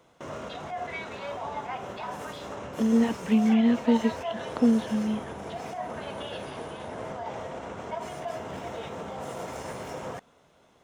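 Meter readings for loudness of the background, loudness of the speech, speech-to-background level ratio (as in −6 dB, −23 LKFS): −36.5 LKFS, −25.0 LKFS, 11.5 dB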